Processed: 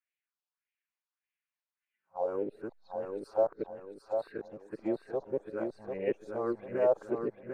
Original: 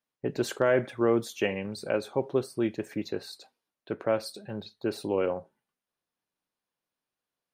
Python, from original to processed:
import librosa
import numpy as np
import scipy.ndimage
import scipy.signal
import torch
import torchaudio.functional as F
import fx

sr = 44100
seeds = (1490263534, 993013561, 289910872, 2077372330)

p1 = np.flip(x).copy()
p2 = fx.auto_wah(p1, sr, base_hz=510.0, top_hz=2400.0, q=2.3, full_db=-29.0, direction='down')
p3 = fx.backlash(p2, sr, play_db=-40.0)
p4 = p2 + F.gain(torch.from_numpy(p3), -11.5).numpy()
p5 = fx.phaser_stages(p4, sr, stages=4, low_hz=320.0, high_hz=1000.0, hz=1.7, feedback_pct=40)
p6 = fx.echo_feedback(p5, sr, ms=746, feedback_pct=38, wet_db=-5.0)
y = F.gain(torch.from_numpy(p6), 3.5).numpy()